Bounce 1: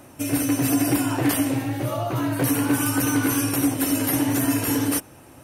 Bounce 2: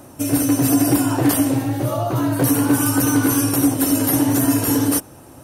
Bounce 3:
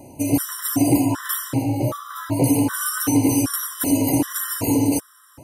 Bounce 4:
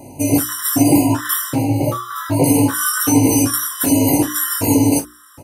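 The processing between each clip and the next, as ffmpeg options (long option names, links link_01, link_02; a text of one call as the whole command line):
ffmpeg -i in.wav -af "equalizer=frequency=2300:width=1.3:gain=-7.5,volume=5dB" out.wav
ffmpeg -i in.wav -af "afftfilt=real='re*gt(sin(2*PI*1.3*pts/sr)*(1-2*mod(floor(b*sr/1024/1000),2)),0)':imag='im*gt(sin(2*PI*1.3*pts/sr)*(1-2*mod(floor(b*sr/1024/1000),2)),0)':win_size=1024:overlap=0.75" out.wav
ffmpeg -i in.wav -af "bandreject=frequency=60:width_type=h:width=6,bandreject=frequency=120:width_type=h:width=6,bandreject=frequency=180:width_type=h:width=6,bandreject=frequency=240:width_type=h:width=6,bandreject=frequency=300:width_type=h:width=6,bandreject=frequency=360:width_type=h:width=6,aecho=1:1:20|53:0.596|0.211,volume=4.5dB" out.wav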